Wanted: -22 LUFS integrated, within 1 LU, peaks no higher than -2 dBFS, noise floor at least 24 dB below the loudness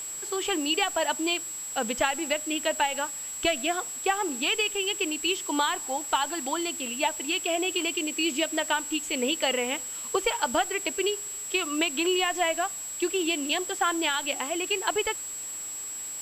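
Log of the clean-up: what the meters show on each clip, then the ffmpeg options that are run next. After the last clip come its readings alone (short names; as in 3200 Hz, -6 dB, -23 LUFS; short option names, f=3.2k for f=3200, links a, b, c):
steady tone 7700 Hz; tone level -34 dBFS; noise floor -37 dBFS; noise floor target -51 dBFS; loudness -27.0 LUFS; peak -9.5 dBFS; loudness target -22.0 LUFS
-> -af "bandreject=f=7.7k:w=30"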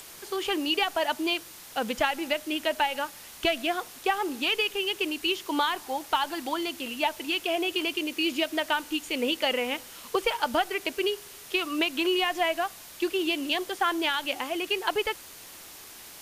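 steady tone none; noise floor -46 dBFS; noise floor target -52 dBFS
-> -af "afftdn=nr=6:nf=-46"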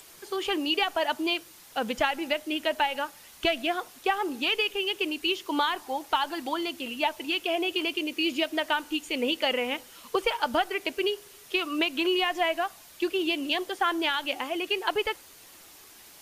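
noise floor -51 dBFS; noise floor target -52 dBFS
-> -af "afftdn=nr=6:nf=-51"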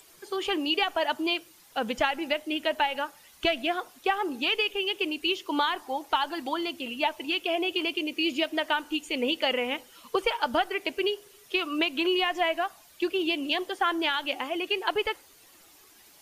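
noise floor -56 dBFS; loudness -28.0 LUFS; peak -10.5 dBFS; loudness target -22.0 LUFS
-> -af "volume=6dB"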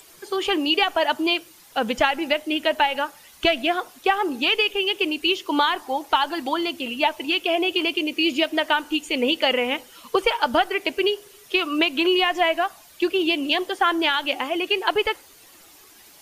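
loudness -22.0 LUFS; peak -4.5 dBFS; noise floor -50 dBFS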